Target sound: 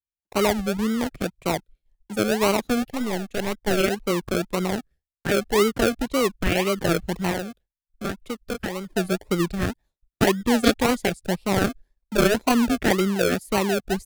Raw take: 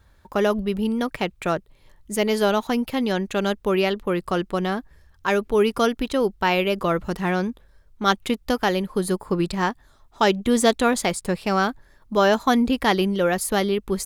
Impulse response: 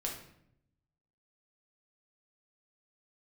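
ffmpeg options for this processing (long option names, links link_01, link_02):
-filter_complex "[0:a]afwtdn=0.0398,asettb=1/sr,asplit=3[link_01][link_02][link_03];[link_01]atrim=end=2.824[link_04];[link_02]atrim=start=2.82:end=3.81,asetpts=PTS-STARTPTS,afade=type=in:duration=0.004:curve=qsin,afade=type=out:start_time=0.986:duration=0.004:curve=qsin,aeval=exprs='0.282*(cos(1*acos(clip(val(0)/0.282,-1,1)))-cos(1*PI/2))+0.141*(cos(2*acos(clip(val(0)/0.282,-1,1)))-cos(2*PI/2))+0.0158*(cos(3*acos(clip(val(0)/0.282,-1,1)))-cos(3*PI/2))+0.00891*(cos(7*acos(clip(val(0)/0.282,-1,1)))-cos(7*PI/2))':channel_layout=same[link_05];[link_03]atrim=start=3.806[link_06];[link_04][link_05]acrossfade=duration=0.004:curve1=hsin:curve2=qsin[link_07];[link_07][link_06]acrossfade=duration=0.004:curve1=qsin:curve2=hsin,asettb=1/sr,asplit=3[link_08][link_09][link_10];[link_08]atrim=end=7.314[link_11];[link_09]atrim=start=7.31:end=8.96,asetpts=PTS-STARTPTS,afade=type=in:duration=0.004:curve=qsin,afade=type=out:start_time=1.646:duration=0.004:curve=qsin,acrossover=split=150|480[link_12][link_13][link_14];[link_12]acompressor=threshold=-40dB:ratio=4[link_15];[link_13]acompressor=threshold=-37dB:ratio=4[link_16];[link_14]acompressor=threshold=-25dB:ratio=4[link_17];[link_15][link_16][link_17]amix=inputs=3:normalize=0[link_18];[link_10]atrim=start=8.956[link_19];[link_11][link_18]acrossfade=duration=0.004:curve1=hsin:curve2=qsin[link_20];[link_20][link_19]acrossfade=duration=0.004:curve1=qsin:curve2=hsin,agate=range=-33dB:threshold=-43dB:ratio=3:detection=peak,acrossover=split=210|1600[link_21][link_22][link_23];[link_22]acrusher=samples=36:mix=1:aa=0.000001:lfo=1:lforange=21.6:lforate=1.9[link_24];[link_21][link_24][link_23]amix=inputs=3:normalize=0"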